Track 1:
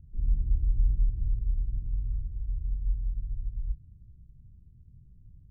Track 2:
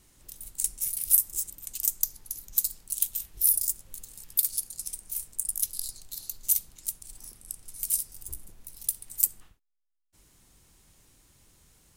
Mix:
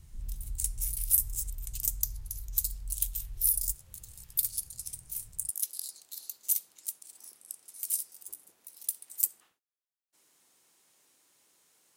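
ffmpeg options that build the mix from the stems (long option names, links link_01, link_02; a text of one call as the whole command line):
ffmpeg -i stem1.wav -i stem2.wav -filter_complex "[0:a]acompressor=threshold=-40dB:ratio=2,volume=-2.5dB[link_01];[1:a]highpass=390,volume=-4dB[link_02];[link_01][link_02]amix=inputs=2:normalize=0" out.wav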